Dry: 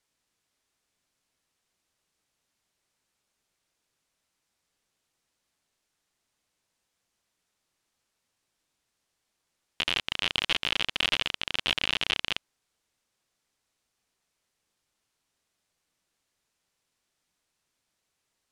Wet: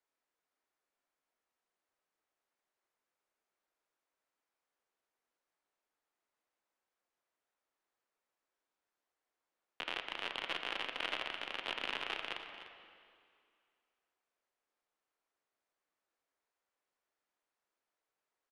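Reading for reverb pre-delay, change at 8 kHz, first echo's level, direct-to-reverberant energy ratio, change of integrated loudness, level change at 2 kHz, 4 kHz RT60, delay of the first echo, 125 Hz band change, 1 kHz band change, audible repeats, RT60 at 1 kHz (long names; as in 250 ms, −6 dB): 26 ms, −17.0 dB, −13.5 dB, 5.0 dB, −12.0 dB, −9.5 dB, 2.1 s, 298 ms, −19.5 dB, −5.0 dB, 1, 2.3 s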